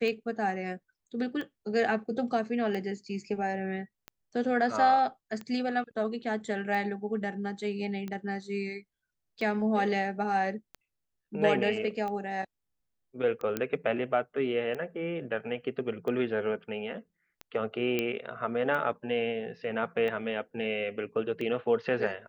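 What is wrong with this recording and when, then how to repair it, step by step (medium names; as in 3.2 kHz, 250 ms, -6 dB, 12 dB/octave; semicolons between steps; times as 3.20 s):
tick 45 rpm -25 dBFS
13.57 s: pop -16 dBFS
17.99 s: pop -15 dBFS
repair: de-click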